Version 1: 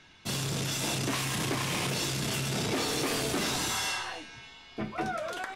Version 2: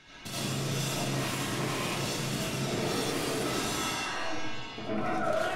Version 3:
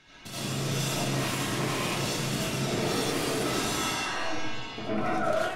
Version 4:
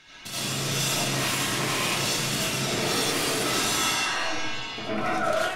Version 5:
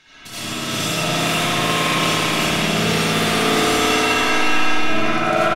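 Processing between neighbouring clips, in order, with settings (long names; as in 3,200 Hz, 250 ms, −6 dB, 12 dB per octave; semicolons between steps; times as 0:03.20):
downward compressor 6 to 1, threshold −39 dBFS, peak gain reduction 11.5 dB; comb and all-pass reverb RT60 1.3 s, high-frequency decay 0.3×, pre-delay 45 ms, DRR −9.5 dB
automatic gain control gain up to 5 dB; level −2.5 dB
tilt shelving filter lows −4 dB; level +3 dB
repeating echo 362 ms, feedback 48%, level −4 dB; spring reverb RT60 3.2 s, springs 55 ms, chirp 75 ms, DRR −6.5 dB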